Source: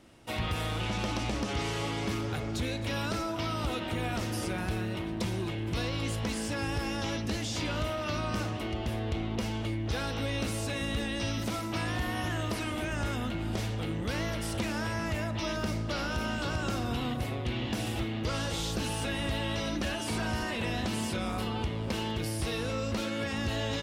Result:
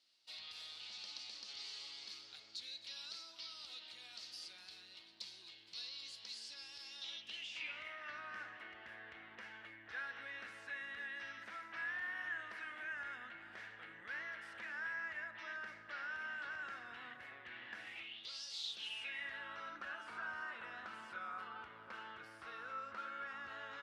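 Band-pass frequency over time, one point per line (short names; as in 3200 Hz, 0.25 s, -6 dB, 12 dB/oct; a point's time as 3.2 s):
band-pass, Q 5.7
6.86 s 4400 Hz
8.13 s 1700 Hz
17.81 s 1700 Hz
18.44 s 5200 Hz
19.49 s 1400 Hz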